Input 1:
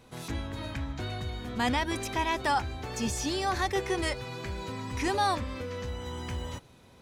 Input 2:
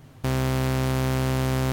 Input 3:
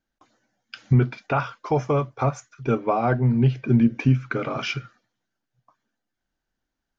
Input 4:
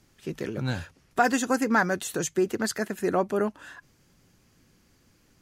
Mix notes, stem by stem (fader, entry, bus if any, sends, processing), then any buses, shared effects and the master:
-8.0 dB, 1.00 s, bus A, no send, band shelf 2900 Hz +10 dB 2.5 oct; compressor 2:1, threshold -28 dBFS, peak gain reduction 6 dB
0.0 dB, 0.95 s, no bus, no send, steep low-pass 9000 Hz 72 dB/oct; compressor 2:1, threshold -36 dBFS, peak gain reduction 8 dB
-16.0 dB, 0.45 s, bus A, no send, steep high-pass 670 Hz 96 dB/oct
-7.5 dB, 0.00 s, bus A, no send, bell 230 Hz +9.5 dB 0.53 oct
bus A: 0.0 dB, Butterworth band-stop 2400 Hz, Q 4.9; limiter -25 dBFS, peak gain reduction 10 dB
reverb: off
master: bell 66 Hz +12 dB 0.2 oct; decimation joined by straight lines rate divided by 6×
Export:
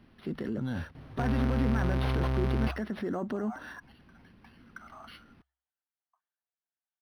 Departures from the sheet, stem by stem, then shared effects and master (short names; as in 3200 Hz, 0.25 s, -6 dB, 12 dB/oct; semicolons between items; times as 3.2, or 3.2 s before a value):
stem 1: muted; stem 4 -7.5 dB -> +1.5 dB